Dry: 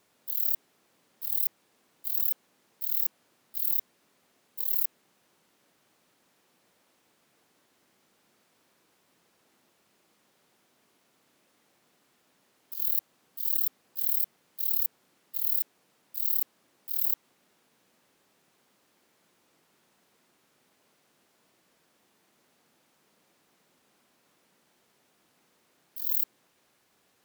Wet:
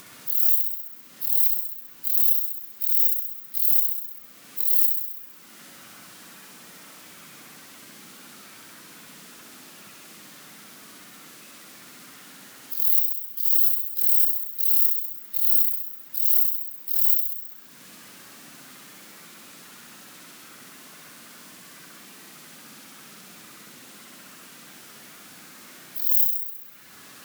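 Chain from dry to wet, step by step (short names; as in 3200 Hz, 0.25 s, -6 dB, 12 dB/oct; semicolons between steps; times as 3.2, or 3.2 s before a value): bin magnitudes rounded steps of 15 dB; band shelf 590 Hz -8.5 dB; in parallel at 0 dB: upward compressor, threshold -32 dBFS; on the sum: low shelf 150 Hz -7.5 dB; on a send: flutter echo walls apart 11.2 m, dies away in 1 s; on the sum: gain +1.5 dB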